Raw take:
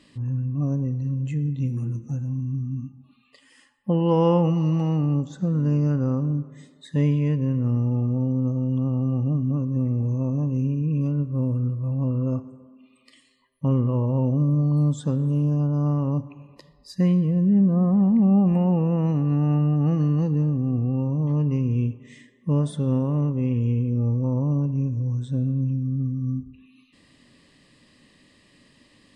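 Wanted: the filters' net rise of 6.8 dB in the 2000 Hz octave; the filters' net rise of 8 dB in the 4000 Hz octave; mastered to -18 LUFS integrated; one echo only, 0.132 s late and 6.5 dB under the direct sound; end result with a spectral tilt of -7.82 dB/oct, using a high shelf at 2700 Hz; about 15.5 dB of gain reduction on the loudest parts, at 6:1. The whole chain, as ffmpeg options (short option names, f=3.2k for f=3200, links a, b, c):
-af "equalizer=f=2k:t=o:g=4,highshelf=f=2.7k:g=7.5,equalizer=f=4k:t=o:g=3,acompressor=threshold=-33dB:ratio=6,aecho=1:1:132:0.473,volume=17dB"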